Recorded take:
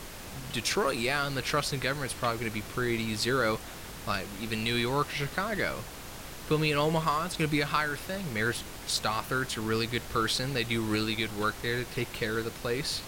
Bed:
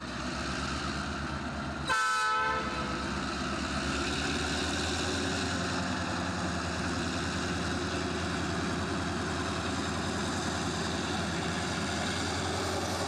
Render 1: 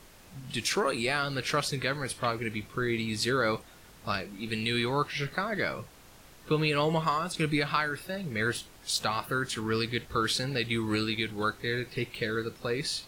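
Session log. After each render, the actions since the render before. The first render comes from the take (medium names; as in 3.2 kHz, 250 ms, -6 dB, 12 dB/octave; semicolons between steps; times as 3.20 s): noise print and reduce 11 dB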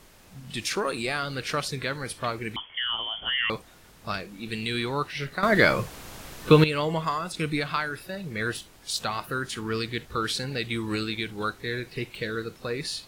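2.56–3.50 s: frequency inversion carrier 3.3 kHz; 5.43–6.64 s: gain +11.5 dB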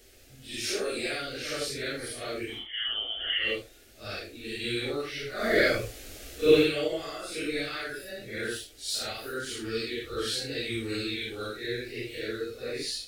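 phase randomisation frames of 200 ms; static phaser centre 410 Hz, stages 4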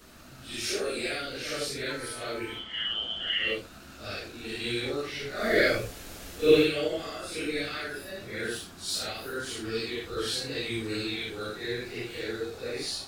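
add bed -17 dB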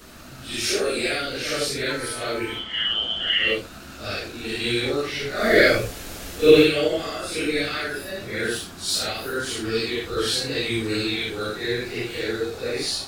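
trim +7.5 dB; peak limiter -2 dBFS, peak gain reduction 1.5 dB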